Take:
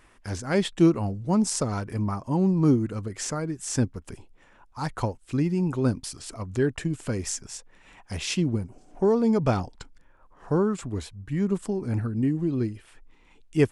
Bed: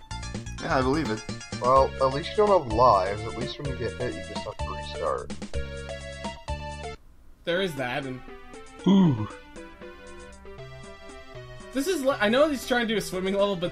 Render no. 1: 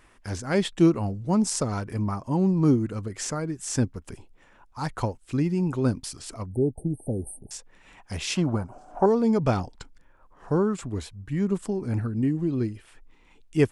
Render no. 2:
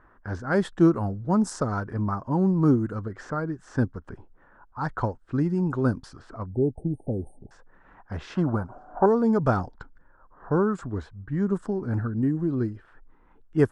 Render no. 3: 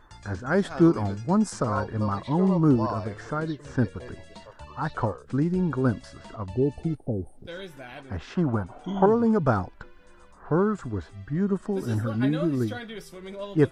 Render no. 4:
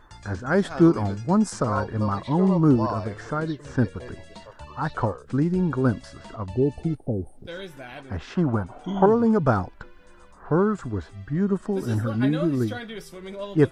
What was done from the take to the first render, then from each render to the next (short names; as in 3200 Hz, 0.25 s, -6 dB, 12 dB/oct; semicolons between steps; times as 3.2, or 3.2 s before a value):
6.46–7.51 brick-wall FIR band-stop 880–8400 Hz; 8.35–9.06 band shelf 950 Hz +13.5 dB
resonant high shelf 1900 Hz -7 dB, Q 3; low-pass opened by the level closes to 1900 Hz, open at -18.5 dBFS
add bed -12.5 dB
gain +2 dB